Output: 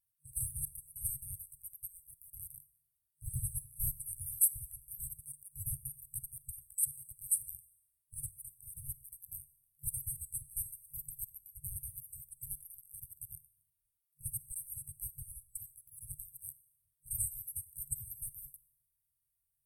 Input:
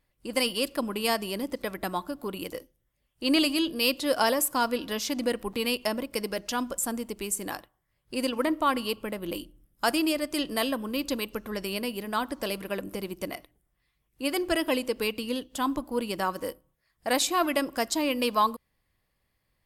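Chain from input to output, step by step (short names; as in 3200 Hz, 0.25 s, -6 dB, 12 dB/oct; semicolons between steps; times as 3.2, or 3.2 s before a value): four-band scrambler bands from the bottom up 4321; FFT band-reject 140–8000 Hz; Schroeder reverb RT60 0.9 s, DRR 17.5 dB; gain +1 dB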